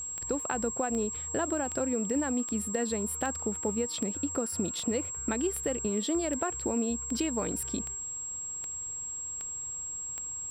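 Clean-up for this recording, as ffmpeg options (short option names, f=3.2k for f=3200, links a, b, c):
-af "adeclick=t=4,bandreject=f=7.6k:w=30"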